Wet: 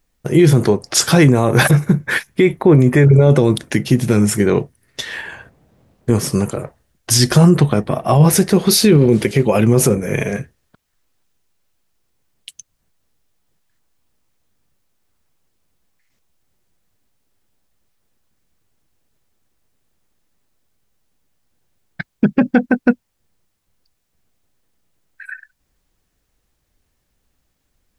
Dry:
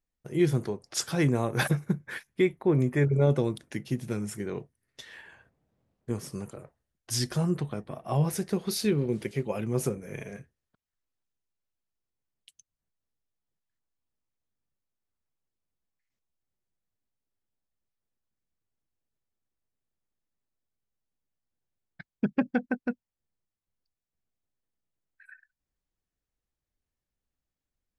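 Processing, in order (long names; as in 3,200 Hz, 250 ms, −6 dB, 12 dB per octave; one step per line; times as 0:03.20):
boost into a limiter +21.5 dB
level −1.5 dB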